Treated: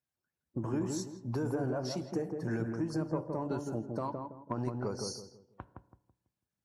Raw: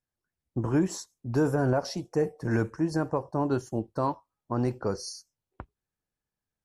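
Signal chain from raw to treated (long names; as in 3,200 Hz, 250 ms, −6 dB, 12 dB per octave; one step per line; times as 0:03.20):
spectral magnitudes quantised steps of 15 dB
high-pass filter 88 Hz
0:04.02–0:04.79: transient designer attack +6 dB, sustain −9 dB
downward compressor, threshold −29 dBFS, peak gain reduction 9 dB
soft clipping −18.5 dBFS, distortion −26 dB
feedback echo with a low-pass in the loop 165 ms, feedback 35%, low-pass 910 Hz, level −3 dB
convolution reverb RT60 0.75 s, pre-delay 3 ms, DRR 15.5 dB
level −2 dB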